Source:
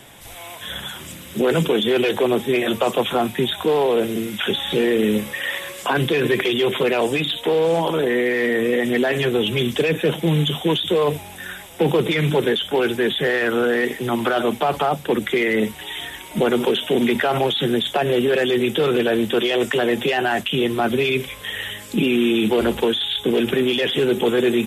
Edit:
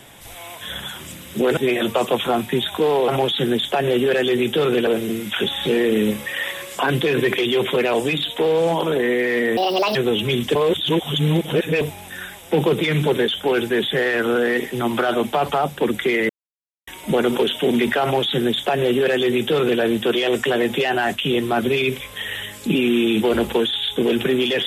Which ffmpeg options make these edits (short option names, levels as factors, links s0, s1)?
-filter_complex "[0:a]asplit=10[s0][s1][s2][s3][s4][s5][s6][s7][s8][s9];[s0]atrim=end=1.572[s10];[s1]atrim=start=2.428:end=3.942[s11];[s2]atrim=start=17.298:end=19.092[s12];[s3]atrim=start=3.938:end=8.644[s13];[s4]atrim=start=8.64:end=9.23,asetpts=PTS-STARTPTS,asetrate=67914,aresample=44100,atrim=end_sample=16895,asetpts=PTS-STARTPTS[s14];[s5]atrim=start=9.226:end=9.832[s15];[s6]atrim=start=9.828:end=11.092,asetpts=PTS-STARTPTS,areverse[s16];[s7]atrim=start=11.088:end=15.57,asetpts=PTS-STARTPTS,afade=t=out:st=4.478:d=0.004:c=hsin[s17];[s8]atrim=start=15.57:end=16.15,asetpts=PTS-STARTPTS,volume=0[s18];[s9]atrim=start=16.15,asetpts=PTS-STARTPTS,afade=t=in:d=0.004:c=hsin[s19];[s10][s11]acrossfade=d=0.004:c1=hsin:c2=hsin[s20];[s20][s12]acrossfade=d=0.004:c1=hsin:c2=hsin[s21];[s21][s13]acrossfade=d=0.004:c1=hsin:c2=hsin[s22];[s22][s14]acrossfade=d=0.004:c1=hsin:c2=hsin[s23];[s23][s15]acrossfade=d=0.004:c1=hsin:c2=hsin[s24];[s24][s16]acrossfade=d=0.004:c1=hsin:c2=hsin[s25];[s17][s18][s19]concat=n=3:v=0:a=1[s26];[s25][s26]acrossfade=d=0.004:c1=hsin:c2=hsin"